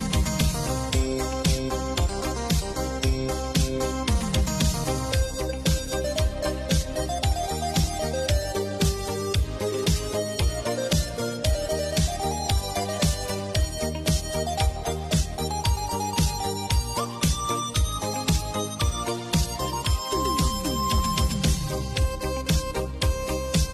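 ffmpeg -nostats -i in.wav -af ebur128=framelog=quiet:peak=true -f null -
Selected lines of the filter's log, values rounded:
Integrated loudness:
  I:         -25.9 LUFS
  Threshold: -35.9 LUFS
Loudness range:
  LRA:         1.0 LU
  Threshold: -45.9 LUFS
  LRA low:   -26.3 LUFS
  LRA high:  -25.3 LUFS
True peak:
  Peak:      -10.4 dBFS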